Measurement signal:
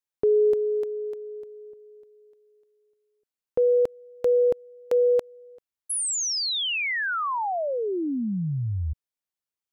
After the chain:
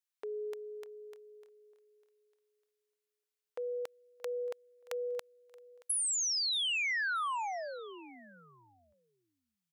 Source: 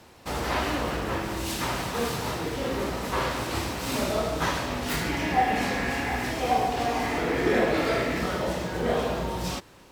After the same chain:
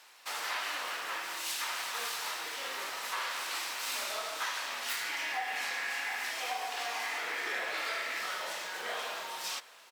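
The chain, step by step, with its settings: high-pass 1.3 kHz 12 dB/octave; feedback delay 626 ms, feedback 34%, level -22.5 dB; compression 4:1, threshold -32 dBFS

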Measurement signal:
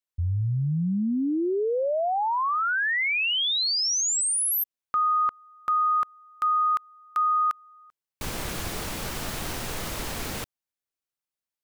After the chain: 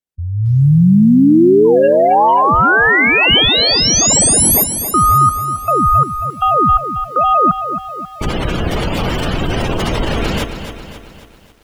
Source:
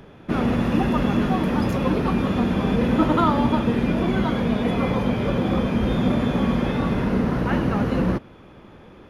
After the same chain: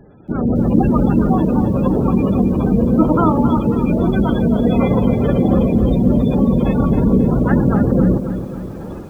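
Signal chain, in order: dynamic bell 3 kHz, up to +4 dB, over -50 dBFS, Q 4.6; in parallel at -6 dB: decimation with a swept rate 31×, swing 60% 1.2 Hz; on the sum: Chebyshev shaper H 2 -26 dB, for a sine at -2.5 dBFS; spectral gate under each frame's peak -20 dB strong; level rider gain up to 17 dB; bit-crushed delay 270 ms, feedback 55%, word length 7-bit, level -9.5 dB; trim -2 dB

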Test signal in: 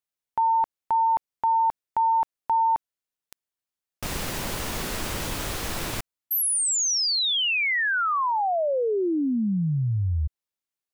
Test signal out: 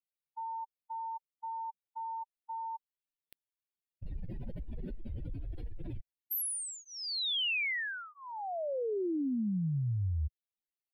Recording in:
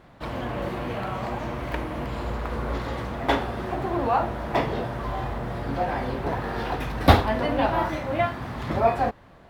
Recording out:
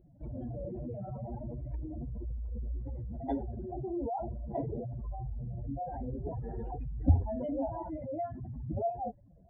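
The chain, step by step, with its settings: spectral contrast enhancement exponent 3.4; static phaser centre 2.8 kHz, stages 4; trim -7 dB

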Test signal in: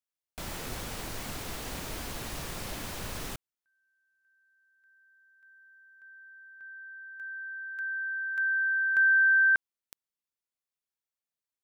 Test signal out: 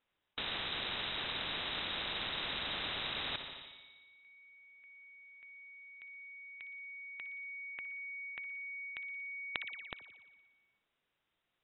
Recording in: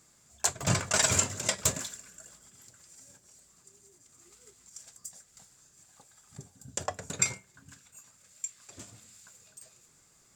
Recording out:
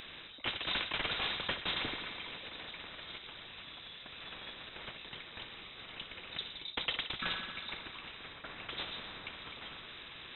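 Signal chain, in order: spring tank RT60 1.1 s, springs 58 ms, chirp 45 ms, DRR 13 dB; reverse; compression 12:1, threshold -35 dBFS; reverse; frequency inversion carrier 3.8 kHz; spectrum-flattening compressor 2:1; trim +5.5 dB

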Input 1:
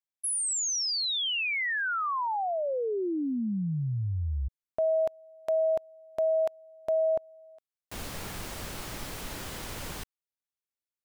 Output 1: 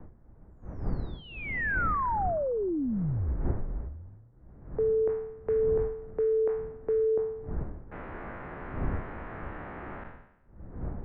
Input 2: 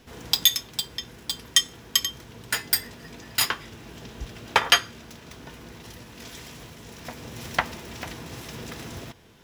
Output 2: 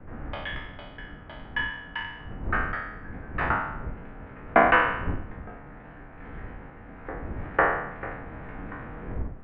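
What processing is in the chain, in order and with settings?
spectral sustain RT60 0.84 s; wind noise 140 Hz -29 dBFS; high-pass 83 Hz 24 dB/octave; mistuned SSB -200 Hz 170–2100 Hz

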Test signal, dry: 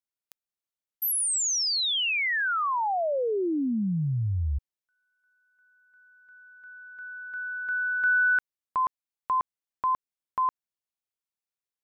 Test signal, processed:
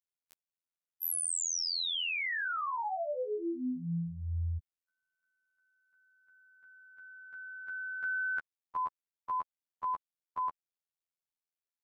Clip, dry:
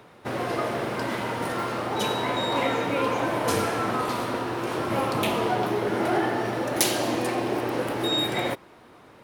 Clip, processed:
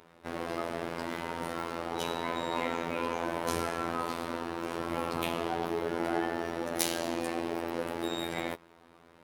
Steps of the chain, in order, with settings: robot voice 84.4 Hz; trim -5.5 dB

